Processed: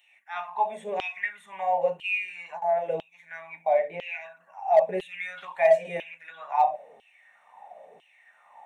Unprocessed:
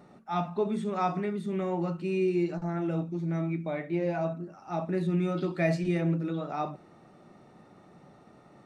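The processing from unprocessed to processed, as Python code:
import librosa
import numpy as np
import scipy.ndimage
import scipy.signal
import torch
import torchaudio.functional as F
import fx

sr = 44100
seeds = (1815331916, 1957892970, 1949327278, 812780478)

p1 = fx.fixed_phaser(x, sr, hz=1300.0, stages=6)
p2 = fx.filter_lfo_highpass(p1, sr, shape='saw_down', hz=1.0, low_hz=380.0, high_hz=3100.0, q=7.5)
p3 = fx.comb(p2, sr, ms=5.0, depth=0.68, at=(4.87, 5.45))
p4 = np.clip(10.0 ** (16.0 / 20.0) * p3, -1.0, 1.0) / 10.0 ** (16.0 / 20.0)
p5 = p3 + (p4 * librosa.db_to_amplitude(-3.5))
y = p5 * librosa.db_to_amplitude(-1.5)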